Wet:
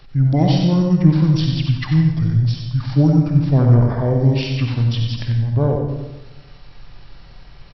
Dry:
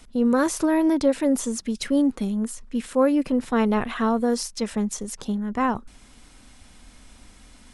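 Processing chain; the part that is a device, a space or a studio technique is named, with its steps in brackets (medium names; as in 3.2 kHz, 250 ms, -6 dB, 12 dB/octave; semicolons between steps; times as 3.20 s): monster voice (pitch shift -10 st; formant shift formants -2 st; bass shelf 210 Hz +6 dB; delay 92 ms -7 dB; reverberation RT60 1.0 s, pre-delay 47 ms, DRR 3.5 dB); trim +2 dB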